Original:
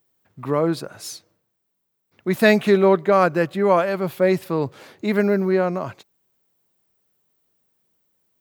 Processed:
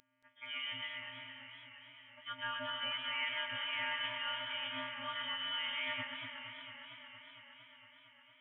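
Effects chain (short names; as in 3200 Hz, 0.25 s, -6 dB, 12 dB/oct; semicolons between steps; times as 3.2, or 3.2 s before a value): frequency quantiser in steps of 2 st; HPF 160 Hz; bell 660 Hz -14.5 dB 0.35 oct; reverse; compressor 5:1, threshold -34 dBFS, peak gain reduction 20 dB; reverse; limiter -28 dBFS, peak gain reduction 5.5 dB; tilt +4 dB/oct; on a send: echo with dull and thin repeats by turns 0.125 s, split 2200 Hz, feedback 65%, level -4 dB; on the sum: inverted band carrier 3400 Hz; warbling echo 0.229 s, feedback 80%, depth 130 cents, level -11 dB; gain -2.5 dB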